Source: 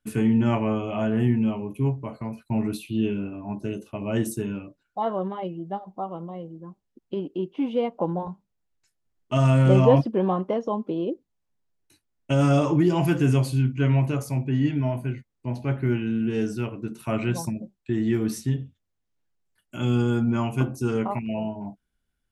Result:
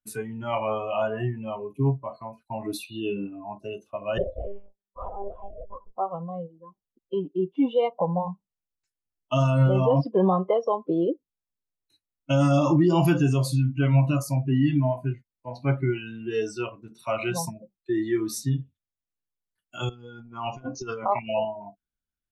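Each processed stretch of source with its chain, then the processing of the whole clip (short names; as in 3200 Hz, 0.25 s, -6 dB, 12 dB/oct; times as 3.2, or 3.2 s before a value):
4.18–5.96 EQ curve 250 Hz 0 dB, 1200 Hz -15 dB, 5800 Hz -11 dB + ring modulator 280 Hz + monotone LPC vocoder at 8 kHz 200 Hz
19.89–21.45 steep low-pass 6500 Hz 72 dB/oct + negative-ratio compressor -27 dBFS, ratio -0.5
whole clip: dynamic EQ 110 Hz, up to +4 dB, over -37 dBFS, Q 3; limiter -15.5 dBFS; spectral noise reduction 18 dB; gain +4 dB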